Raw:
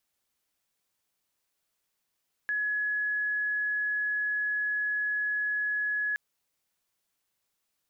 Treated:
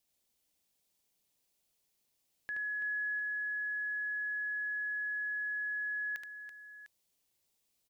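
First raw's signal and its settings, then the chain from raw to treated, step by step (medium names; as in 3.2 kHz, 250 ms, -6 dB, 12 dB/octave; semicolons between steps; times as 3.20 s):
tone sine 1.69 kHz -26.5 dBFS 3.67 s
peaking EQ 1.4 kHz -10 dB 1.2 oct; on a send: multi-tap echo 75/332/702 ms -4/-9/-14 dB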